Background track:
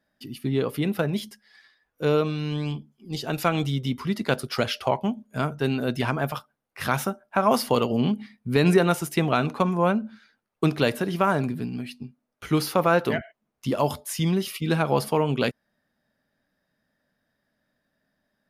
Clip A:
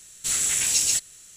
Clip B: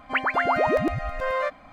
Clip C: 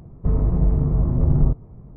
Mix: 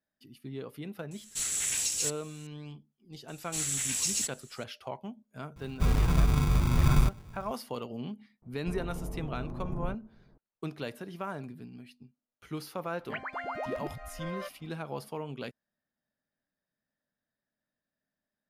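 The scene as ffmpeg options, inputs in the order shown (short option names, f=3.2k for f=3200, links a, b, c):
-filter_complex "[1:a]asplit=2[a][b];[3:a]asplit=2[c][d];[0:a]volume=-15.5dB[e];[a]alimiter=limit=-12dB:level=0:latency=1:release=244[f];[c]acrusher=samples=37:mix=1:aa=0.000001[g];[d]equalizer=f=72:w=0.49:g=-14[h];[f]atrim=end=1.36,asetpts=PTS-STARTPTS,volume=-7dB,afade=t=in:d=0.004:c=hsin,afade=t=out:st=1.356:d=0.004:c=hsin,adelay=1110[i];[b]atrim=end=1.36,asetpts=PTS-STARTPTS,volume=-8.5dB,afade=t=in:d=0.004:c=hsin,afade=t=out:st=1.356:d=0.004:c=hsin,adelay=3280[j];[g]atrim=end=1.96,asetpts=PTS-STARTPTS,volume=-6dB,afade=t=in:d=0.004:c=hsin,afade=t=out:st=1.956:d=0.004:c=hsin,adelay=5560[k];[h]atrim=end=1.96,asetpts=PTS-STARTPTS,volume=-10.5dB,afade=t=in:d=0.004:c=hsin,afade=t=out:st=1.956:d=0.004:c=hsin,adelay=371322S[l];[2:a]atrim=end=1.72,asetpts=PTS-STARTPTS,volume=-14.5dB,afade=t=in:d=0.004:c=hsin,afade=t=out:st=1.716:d=0.004:c=hsin,adelay=12990[m];[e][i][j][k][l][m]amix=inputs=6:normalize=0"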